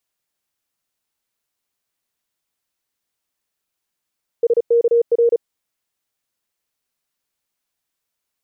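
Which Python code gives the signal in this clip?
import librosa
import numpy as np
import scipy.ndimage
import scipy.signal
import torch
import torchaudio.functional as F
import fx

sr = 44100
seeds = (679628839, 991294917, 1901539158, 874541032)

y = fx.morse(sr, text='SKR', wpm=35, hz=469.0, level_db=-10.5)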